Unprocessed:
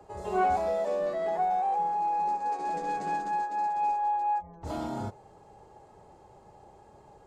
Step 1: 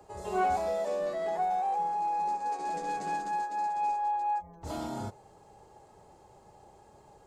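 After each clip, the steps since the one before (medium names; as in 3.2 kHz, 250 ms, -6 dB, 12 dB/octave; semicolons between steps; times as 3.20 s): treble shelf 3.8 kHz +8 dB; trim -2.5 dB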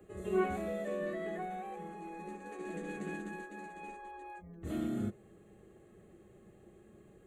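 static phaser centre 2.2 kHz, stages 4; small resonant body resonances 210/340/1100/1800 Hz, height 11 dB, ringing for 55 ms; trim -2 dB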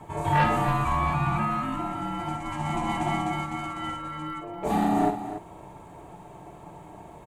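ring modulator 520 Hz; sine folder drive 8 dB, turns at -20 dBFS; loudspeakers at several distances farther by 18 m -9 dB, 97 m -11 dB; trim +4 dB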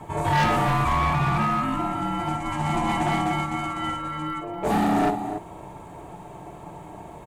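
hard clipper -22 dBFS, distortion -12 dB; trim +4.5 dB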